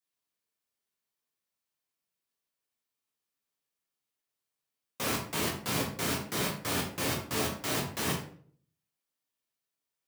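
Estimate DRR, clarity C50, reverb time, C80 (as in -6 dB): -1.5 dB, 6.5 dB, 0.50 s, 10.5 dB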